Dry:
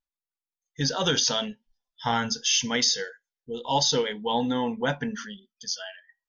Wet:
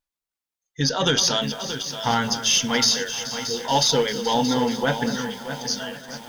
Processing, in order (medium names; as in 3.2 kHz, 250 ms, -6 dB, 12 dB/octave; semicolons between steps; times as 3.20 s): single-diode clipper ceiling -11.5 dBFS; echo whose repeats swap between lows and highs 214 ms, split 2 kHz, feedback 77%, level -11.5 dB; bit-crushed delay 627 ms, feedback 55%, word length 7-bit, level -10 dB; trim +4.5 dB